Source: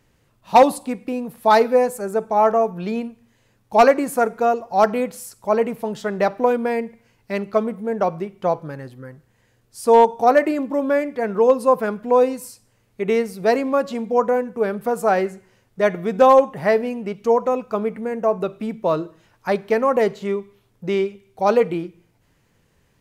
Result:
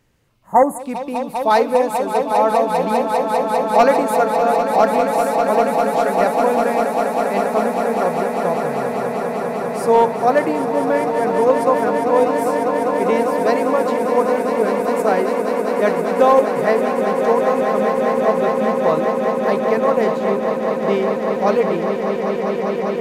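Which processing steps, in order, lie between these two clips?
0:05.34–0:05.87: floating-point word with a short mantissa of 6 bits
echo that builds up and dies away 199 ms, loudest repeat 8, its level −9.5 dB
0:00.32–0:00.77: healed spectral selection 2,100–6,400 Hz before
level −1 dB

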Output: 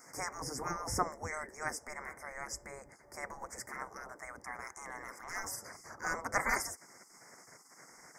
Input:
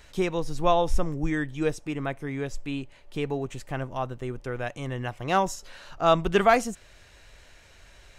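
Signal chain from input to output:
gate on every frequency bin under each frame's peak −20 dB weak
Chebyshev band-stop filter 2,100–5,000 Hz, order 4
0:04.76–0:05.70: transient designer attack −10 dB, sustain +2 dB
level +5 dB

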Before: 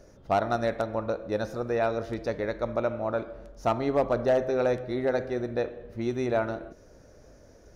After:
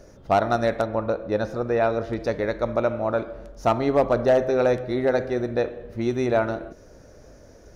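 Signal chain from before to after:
0:00.85–0:02.20: high-shelf EQ 5,900 Hz −11 dB
level +5 dB

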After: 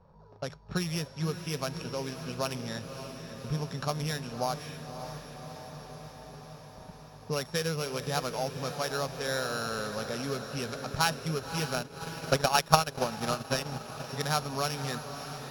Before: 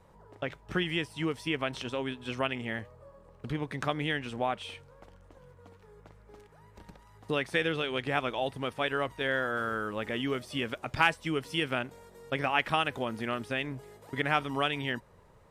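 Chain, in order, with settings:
samples sorted by size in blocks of 8 samples
low-pass that shuts in the quiet parts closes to 2,300 Hz, open at −27 dBFS
thirty-one-band graphic EQ 160 Hz +6 dB, 315 Hz −12 dB, 2,000 Hz −9 dB, 3,150 Hz −6 dB
feedback delay with all-pass diffusion 577 ms, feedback 73%, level −9.5 dB
0:11.73–0:14.12: transient designer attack +12 dB, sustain −10 dB
high-shelf EQ 5,600 Hz −5.5 dB

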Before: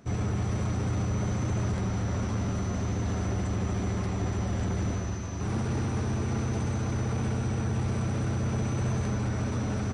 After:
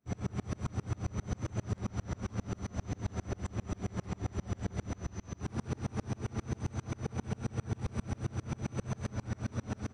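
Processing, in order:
tremolo with a ramp in dB swelling 7.5 Hz, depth 33 dB

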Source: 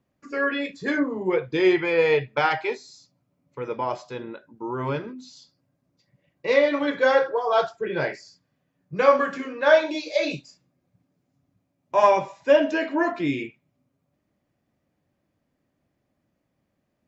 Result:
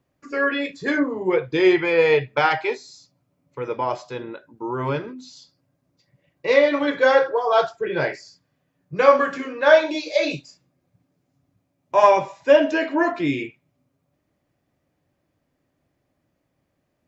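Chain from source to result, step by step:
parametric band 210 Hz −7.5 dB 0.27 octaves
level +3 dB

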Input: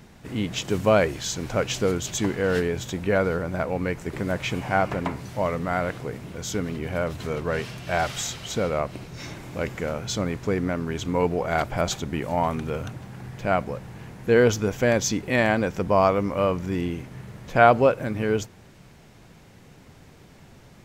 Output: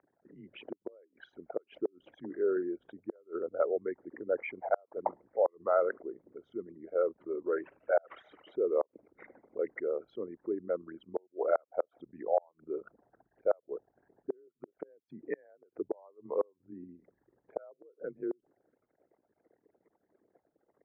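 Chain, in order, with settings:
spectral envelope exaggerated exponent 3
gate with flip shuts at −14 dBFS, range −37 dB
single-sideband voice off tune −77 Hz 530–2,000 Hz

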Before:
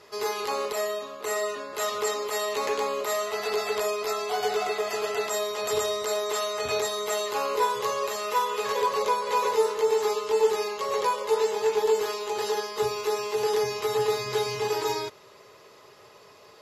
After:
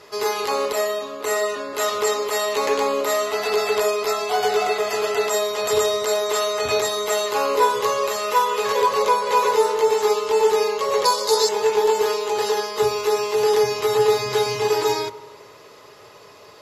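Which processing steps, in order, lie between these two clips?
0:11.05–0:11.49: high shelf with overshoot 3,500 Hz +8 dB, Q 3
feedback delay network reverb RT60 1.2 s, low-frequency decay 1.35×, high-frequency decay 0.25×, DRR 12.5 dB
level +6 dB

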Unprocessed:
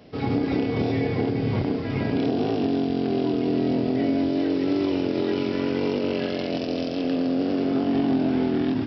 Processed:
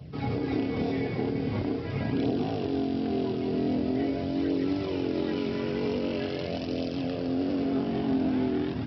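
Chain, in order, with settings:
flanger 0.44 Hz, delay 0.2 ms, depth 5.3 ms, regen −44%
noise in a band 71–180 Hz −42 dBFS
level −1 dB

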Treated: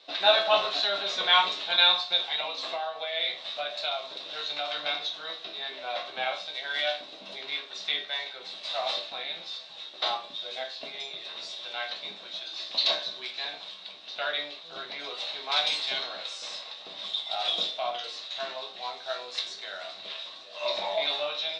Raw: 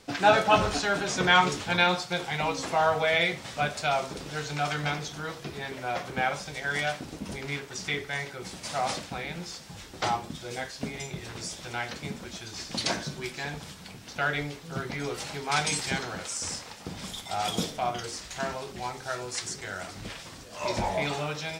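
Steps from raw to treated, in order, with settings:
high-pass filter 460 Hz 12 dB per octave
parametric band 630 Hz +11 dB 0.3 octaves
0:02.29–0:04.76: downward compressor 5 to 1, threshold −25 dBFS, peak gain reduction 11 dB
low-pass with resonance 3,800 Hz, resonance Q 11
resonators tuned to a chord C2 major, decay 0.29 s
hollow resonant body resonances 1,100/2,700 Hz, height 10 dB, ringing for 60 ms
level +4 dB

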